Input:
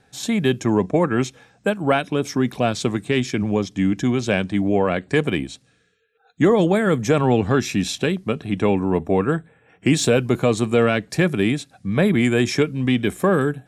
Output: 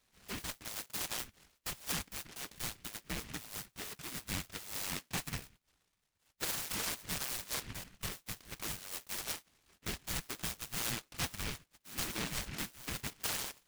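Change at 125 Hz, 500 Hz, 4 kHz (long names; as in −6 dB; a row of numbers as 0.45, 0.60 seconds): −24.5, −32.0, −10.5 decibels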